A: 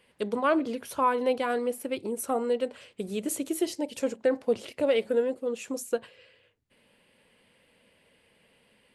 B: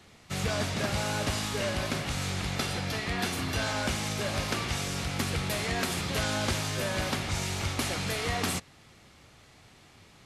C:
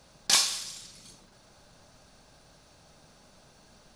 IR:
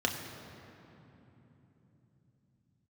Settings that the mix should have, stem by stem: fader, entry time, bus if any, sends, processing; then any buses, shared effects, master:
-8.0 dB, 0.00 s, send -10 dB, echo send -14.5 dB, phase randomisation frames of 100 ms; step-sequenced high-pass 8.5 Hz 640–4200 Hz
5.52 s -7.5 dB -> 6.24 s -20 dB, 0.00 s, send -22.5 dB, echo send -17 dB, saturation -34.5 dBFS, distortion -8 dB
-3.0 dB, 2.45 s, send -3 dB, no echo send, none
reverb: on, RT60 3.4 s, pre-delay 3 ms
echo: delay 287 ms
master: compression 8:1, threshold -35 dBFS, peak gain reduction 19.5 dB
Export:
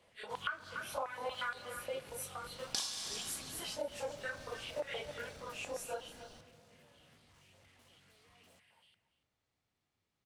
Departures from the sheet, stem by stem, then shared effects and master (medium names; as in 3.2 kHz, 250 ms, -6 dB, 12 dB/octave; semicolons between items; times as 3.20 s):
stem B -7.5 dB -> -18.0 dB; reverb return -9.0 dB